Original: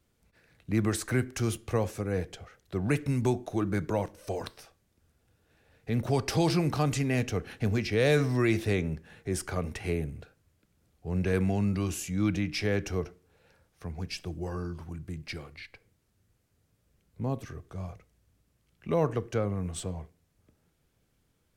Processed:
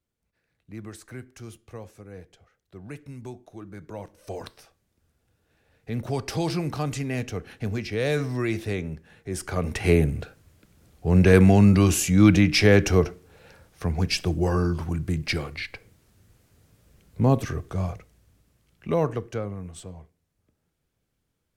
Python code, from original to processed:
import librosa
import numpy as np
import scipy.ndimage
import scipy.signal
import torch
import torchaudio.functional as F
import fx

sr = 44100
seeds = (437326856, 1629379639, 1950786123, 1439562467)

y = fx.gain(x, sr, db=fx.line((3.76, -12.0), (4.35, -1.0), (9.28, -1.0), (9.94, 12.0), (17.56, 12.0), (18.9, 4.0), (19.74, -5.0)))